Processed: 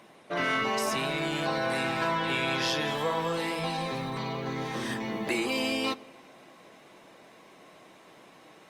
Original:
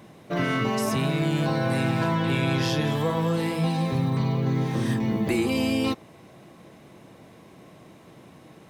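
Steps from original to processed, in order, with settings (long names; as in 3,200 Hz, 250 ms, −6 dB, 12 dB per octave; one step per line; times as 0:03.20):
meter weighting curve A
on a send at −21.5 dB: convolution reverb RT60 2.1 s, pre-delay 4 ms
on the sum: Opus 32 kbit/s 48,000 Hz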